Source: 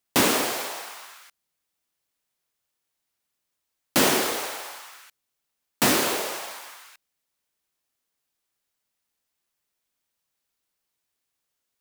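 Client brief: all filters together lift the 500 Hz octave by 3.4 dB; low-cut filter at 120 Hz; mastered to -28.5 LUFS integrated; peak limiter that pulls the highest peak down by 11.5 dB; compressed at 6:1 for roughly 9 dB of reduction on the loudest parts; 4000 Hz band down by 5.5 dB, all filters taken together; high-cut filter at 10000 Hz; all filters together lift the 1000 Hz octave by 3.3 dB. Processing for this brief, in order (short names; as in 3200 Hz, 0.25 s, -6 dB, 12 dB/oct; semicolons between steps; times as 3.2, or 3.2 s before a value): HPF 120 Hz; LPF 10000 Hz; bell 500 Hz +3.5 dB; bell 1000 Hz +3.5 dB; bell 4000 Hz -7.5 dB; compressor 6:1, threshold -25 dBFS; gain +5 dB; limiter -17 dBFS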